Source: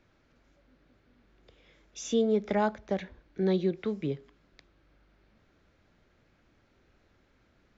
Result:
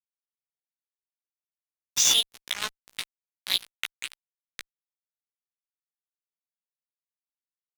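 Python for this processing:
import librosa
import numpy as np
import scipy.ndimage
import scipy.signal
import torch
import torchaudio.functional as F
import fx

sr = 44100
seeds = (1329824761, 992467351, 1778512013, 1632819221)

y = fx.filter_sweep_highpass(x, sr, from_hz=3200.0, to_hz=140.0, start_s=3.79, end_s=7.46, q=1.5)
y = fx.fuzz(y, sr, gain_db=32.0, gate_db=-41.0)
y = fx.doubler(y, sr, ms=16.0, db=-3)
y = y * librosa.db_to_amplitude(3.0)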